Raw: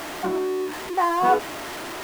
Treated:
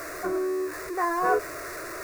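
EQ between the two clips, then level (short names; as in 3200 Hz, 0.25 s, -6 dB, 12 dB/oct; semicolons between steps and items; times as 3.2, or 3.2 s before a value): fixed phaser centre 850 Hz, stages 6; 0.0 dB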